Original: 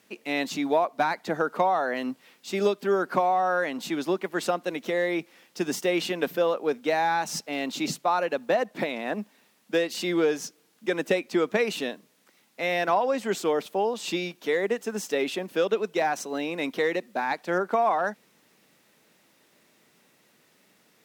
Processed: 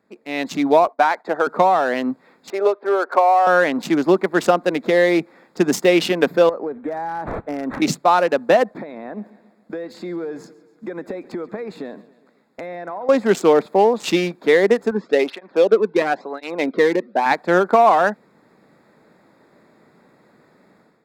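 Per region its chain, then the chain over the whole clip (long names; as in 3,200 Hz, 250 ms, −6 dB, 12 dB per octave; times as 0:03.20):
0:00.87–0:01.47: high-pass filter 550 Hz + downward expander −49 dBFS + spectral tilt −2 dB per octave
0:02.50–0:03.47: high-pass filter 440 Hz 24 dB per octave + high-frequency loss of the air 330 metres + one half of a high-frequency compander decoder only
0:06.49–0:07.82: downward compressor 16 to 1, threshold −31 dBFS + linearly interpolated sample-rate reduction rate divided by 8×
0:08.74–0:13.09: noise gate −55 dBFS, range −7 dB + downward compressor, threshold −38 dBFS + repeating echo 137 ms, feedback 57%, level −19.5 dB
0:14.91–0:17.26: low-pass filter 4,500 Hz 24 dB per octave + through-zero flanger with one copy inverted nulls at 1 Hz, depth 1.7 ms
whole clip: adaptive Wiener filter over 15 samples; automatic gain control gain up to 12.5 dB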